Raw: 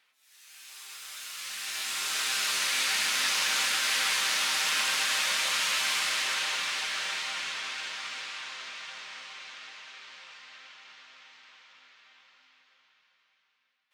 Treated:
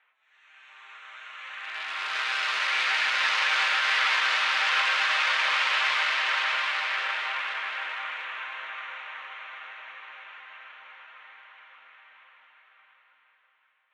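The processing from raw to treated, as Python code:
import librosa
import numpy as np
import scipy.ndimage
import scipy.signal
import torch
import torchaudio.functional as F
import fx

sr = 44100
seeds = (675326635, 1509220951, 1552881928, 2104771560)

y = fx.wiener(x, sr, points=9)
y = fx.bandpass_edges(y, sr, low_hz=670.0, high_hz=2700.0)
y = y + 10.0 ** (-5.5 / 20.0) * np.pad(y, (int(726 * sr / 1000.0), 0))[:len(y)]
y = F.gain(torch.from_numpy(y), 7.0).numpy()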